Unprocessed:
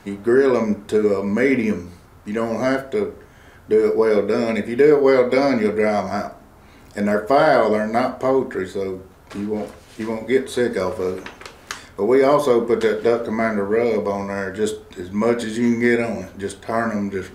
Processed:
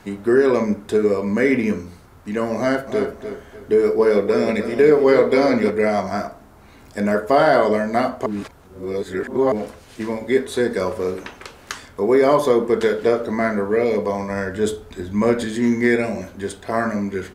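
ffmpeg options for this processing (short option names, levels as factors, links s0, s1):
-filter_complex "[0:a]asplit=3[s0][s1][s2];[s0]afade=t=out:st=2.86:d=0.02[s3];[s1]aecho=1:1:299|598|897:0.335|0.104|0.0322,afade=t=in:st=2.86:d=0.02,afade=t=out:st=5.69:d=0.02[s4];[s2]afade=t=in:st=5.69:d=0.02[s5];[s3][s4][s5]amix=inputs=3:normalize=0,asettb=1/sr,asplit=3[s6][s7][s8];[s6]atrim=end=14.304[s9];[s7]atrim=start=14.3:end=15.47,asetpts=PTS-STARTPTS,afade=t=in:d=0.004:c=qsin,afade=t=out:st=1.166:d=0.004:c=qsin,lowshelf=f=120:g=8[s10];[s8]atrim=start=15.466[s11];[s9][s10]acrossfade=d=0.004:c1=hsin:c2=qsin[s12];[s12][s11]acrossfade=d=0.004:c1=qsin:c2=hsin,asplit=3[s13][s14][s15];[s13]atrim=end=8.262[s16];[s14]atrim=start=8.258:end=9.522,asetpts=PTS-STARTPTS,areverse[s17];[s15]atrim=start=9.518[s18];[s16][s17]acrossfade=d=0.004:c1=hsin:c2=hsin[s19];[s19][s18]acrossfade=d=0.004:c1=hsin:c2=hsin"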